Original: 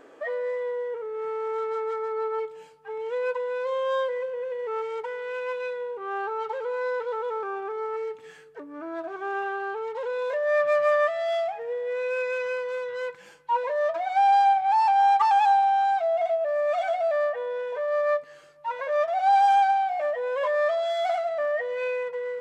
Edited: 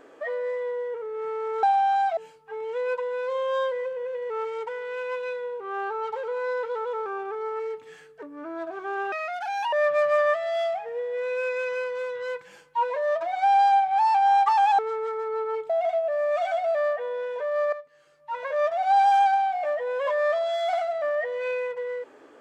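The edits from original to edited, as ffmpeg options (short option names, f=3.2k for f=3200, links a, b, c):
-filter_complex "[0:a]asplit=8[a][b][c][d][e][f][g][h];[a]atrim=end=1.632[i];[b]atrim=start=15.518:end=16.062[j];[c]atrim=start=2.538:end=9.494[k];[d]atrim=start=9.49:end=10.46,asetpts=PTS-STARTPTS,asetrate=70560,aresample=44100[l];[e]atrim=start=10.456:end=15.522[m];[f]atrim=start=1.628:end=2.542[n];[g]atrim=start=16.058:end=18.09,asetpts=PTS-STARTPTS,afade=t=out:st=2.028:d=0.004:c=hsin:silence=0.188365[o];[h]atrim=start=18.09,asetpts=PTS-STARTPTS,afade=t=in:d=0.68:c=qua:silence=0.188365[p];[i][j]acrossfade=d=0.004:c1=hsin:c2=hsin[q];[q][k]acrossfade=d=0.004:c1=hsin:c2=hsin[r];[r][l]acrossfade=d=0.004:c1=hsin:c2=hsin[s];[s][m]acrossfade=d=0.004:c1=hsin:c2=hsin[t];[t][n]acrossfade=d=0.004:c1=hsin:c2=hsin[u];[o][p]concat=n=2:v=0:a=1[v];[u][v]acrossfade=d=0.004:c1=hsin:c2=hsin"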